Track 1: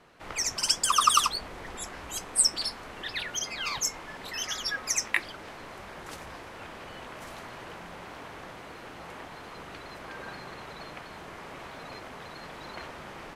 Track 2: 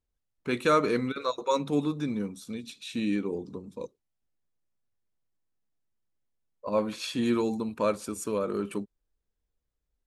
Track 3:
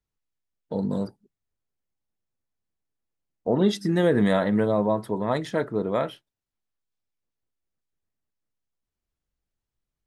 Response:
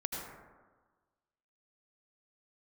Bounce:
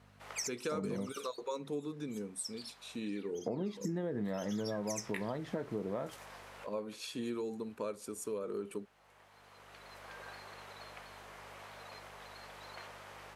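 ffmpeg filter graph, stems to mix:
-filter_complex "[0:a]highpass=f=420:w=0.5412,highpass=f=420:w=1.3066,aeval=exprs='val(0)+0.00355*(sin(2*PI*50*n/s)+sin(2*PI*2*50*n/s)/2+sin(2*PI*3*50*n/s)/3+sin(2*PI*4*50*n/s)/4+sin(2*PI*5*50*n/s)/5)':c=same,flanger=delay=8.2:depth=9.2:regen=-71:speed=0.85:shape=triangular,volume=0.668[s0];[1:a]equalizer=f=430:w=3.4:g=8,volume=0.299,asplit=2[s1][s2];[2:a]lowpass=f=1000:p=1,acompressor=threshold=0.0501:ratio=2,volume=0.891[s3];[s2]apad=whole_len=588864[s4];[s0][s4]sidechaincompress=threshold=0.002:ratio=4:attack=20:release=886[s5];[s5][s1][s3]amix=inputs=3:normalize=0,highpass=73,highshelf=f=6900:g=7,acompressor=threshold=0.0178:ratio=4"

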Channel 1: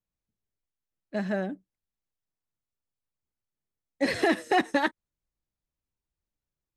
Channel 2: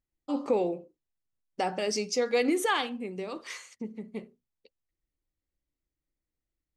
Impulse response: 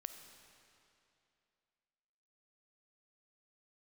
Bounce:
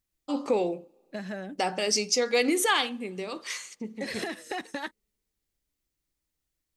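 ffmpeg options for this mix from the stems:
-filter_complex "[0:a]acompressor=threshold=0.0316:ratio=6,volume=0.708[s0];[1:a]volume=1,asplit=2[s1][s2];[s2]volume=0.0794[s3];[2:a]atrim=start_sample=2205[s4];[s3][s4]afir=irnorm=-1:irlink=0[s5];[s0][s1][s5]amix=inputs=3:normalize=0,highshelf=f=2200:g=8.5"

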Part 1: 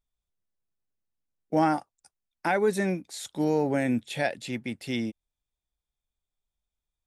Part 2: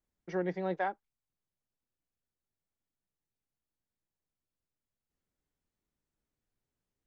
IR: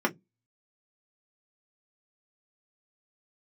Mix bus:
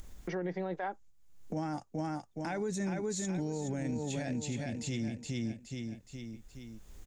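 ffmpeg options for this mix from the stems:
-filter_complex "[0:a]lowpass=f=6800:t=q:w=6.7,lowshelf=f=140:g=12,volume=1.41,asplit=2[s0][s1];[s1]volume=0.168[s2];[1:a]lowshelf=f=160:g=-8.5,volume=1.41,asplit=2[s3][s4];[s4]apad=whole_len=311459[s5];[s0][s5]sidechaingate=range=0.282:threshold=0.00158:ratio=16:detection=peak[s6];[s2]aecho=0:1:419|838|1257|1676:1|0.3|0.09|0.027[s7];[s6][s3][s7]amix=inputs=3:normalize=0,acompressor=mode=upward:threshold=0.0178:ratio=2.5,lowshelf=f=200:g=9,alimiter=level_in=1.5:limit=0.0631:level=0:latency=1:release=59,volume=0.668"

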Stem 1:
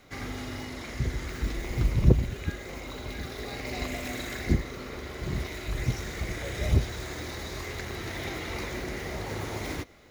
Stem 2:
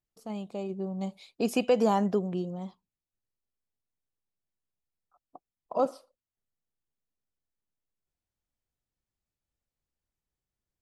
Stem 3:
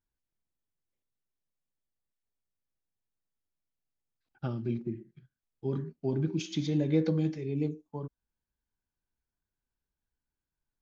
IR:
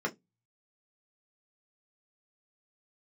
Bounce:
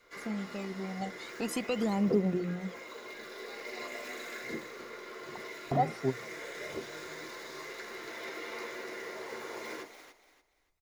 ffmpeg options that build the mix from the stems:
-filter_complex "[0:a]highpass=560,volume=0.531,asplit=3[s0][s1][s2];[s1]volume=0.631[s3];[s2]volume=0.316[s4];[1:a]aphaser=in_gain=1:out_gain=1:delay=1.5:decay=0.79:speed=0.44:type=triangular,volume=1,asplit=2[s5][s6];[2:a]volume=1.19[s7];[s6]apad=whole_len=481177[s8];[s7][s8]sidechaingate=range=0.0224:threshold=0.00282:ratio=16:detection=peak[s9];[s0][s5]amix=inputs=2:normalize=0,acompressor=threshold=0.0112:ratio=1.5,volume=1[s10];[3:a]atrim=start_sample=2205[s11];[s3][s11]afir=irnorm=-1:irlink=0[s12];[s4]aecho=0:1:290|580|870|1160:1|0.27|0.0729|0.0197[s13];[s9][s10][s12][s13]amix=inputs=4:normalize=0,bandreject=f=60:t=h:w=6,bandreject=f=120:t=h:w=6,bandreject=f=180:t=h:w=6"

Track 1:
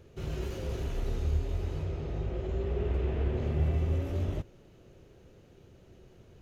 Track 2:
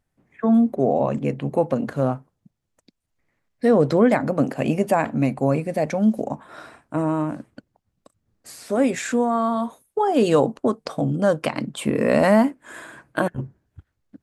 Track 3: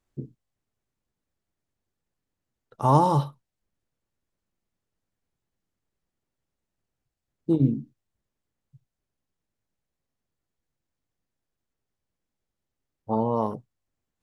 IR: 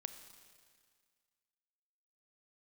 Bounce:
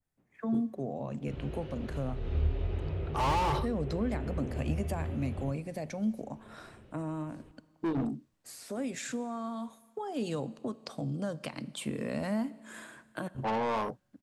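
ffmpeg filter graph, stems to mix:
-filter_complex "[0:a]lowpass=f=3500:w=0.5412,lowpass=f=3500:w=1.3066,adelay=1100,volume=0.668,asplit=2[s0][s1];[s1]volume=0.668[s2];[1:a]adynamicequalizer=threshold=0.00794:dfrequency=4300:dqfactor=0.73:tfrequency=4300:tqfactor=0.73:attack=5:release=100:ratio=0.375:range=3:mode=boostabove:tftype=bell,acrossover=split=220[s3][s4];[s4]acompressor=threshold=0.0316:ratio=2.5[s5];[s3][s5]amix=inputs=2:normalize=0,volume=0.211,asplit=3[s6][s7][s8];[s7]volume=0.708[s9];[2:a]asplit=2[s10][s11];[s11]highpass=f=720:p=1,volume=31.6,asoftclip=type=tanh:threshold=0.473[s12];[s10][s12]amix=inputs=2:normalize=0,lowpass=f=2800:p=1,volume=0.501,adelay=350,volume=0.158[s13];[s8]apad=whole_len=331307[s14];[s0][s14]sidechaincompress=threshold=0.00316:ratio=8:attack=16:release=206[s15];[3:a]atrim=start_sample=2205[s16];[s2][s9]amix=inputs=2:normalize=0[s17];[s17][s16]afir=irnorm=-1:irlink=0[s18];[s15][s6][s13][s18]amix=inputs=4:normalize=0,highshelf=f=5600:g=5"

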